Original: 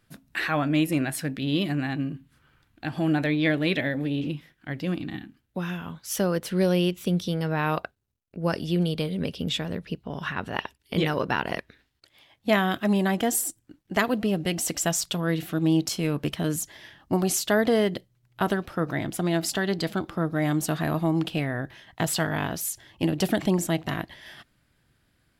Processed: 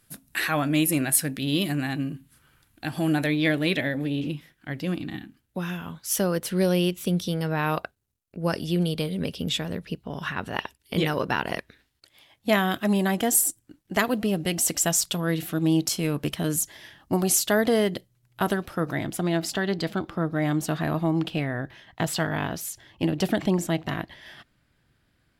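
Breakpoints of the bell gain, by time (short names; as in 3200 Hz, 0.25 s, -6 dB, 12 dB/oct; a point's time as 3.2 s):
bell 11000 Hz 1.4 oct
3.2 s +15 dB
3.92 s +6.5 dB
18.9 s +6.5 dB
19.39 s -4.5 dB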